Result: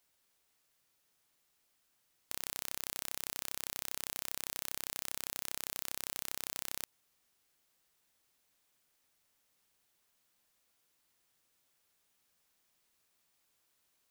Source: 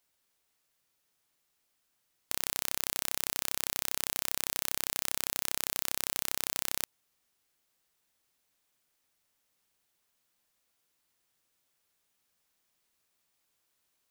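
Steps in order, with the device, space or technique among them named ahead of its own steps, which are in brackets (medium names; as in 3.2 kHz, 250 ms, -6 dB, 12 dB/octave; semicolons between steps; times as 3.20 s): soft clipper into limiter (saturation -8 dBFS, distortion -39 dB; peak limiter -11.5 dBFS, peak gain reduction 3 dB); trim +1 dB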